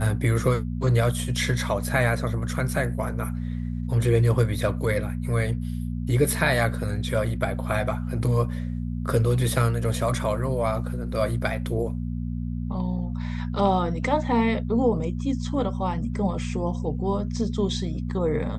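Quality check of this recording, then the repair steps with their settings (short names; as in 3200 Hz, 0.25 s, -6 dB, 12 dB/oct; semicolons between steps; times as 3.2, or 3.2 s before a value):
hum 60 Hz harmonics 4 -29 dBFS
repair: de-hum 60 Hz, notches 4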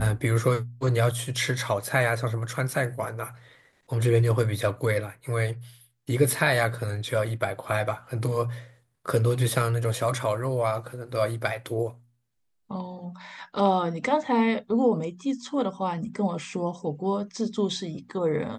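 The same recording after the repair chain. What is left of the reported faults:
none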